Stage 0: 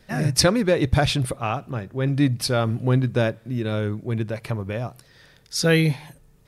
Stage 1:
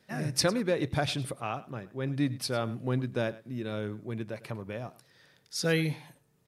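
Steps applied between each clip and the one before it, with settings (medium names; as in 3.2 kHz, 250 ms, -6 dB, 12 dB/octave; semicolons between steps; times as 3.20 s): high-pass 130 Hz 12 dB/octave; delay 103 ms -18.5 dB; trim -8.5 dB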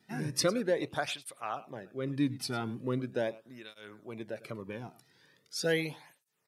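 cancelling through-zero flanger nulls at 0.4 Hz, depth 1.9 ms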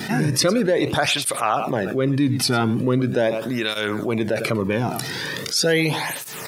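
level flattener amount 70%; trim +8 dB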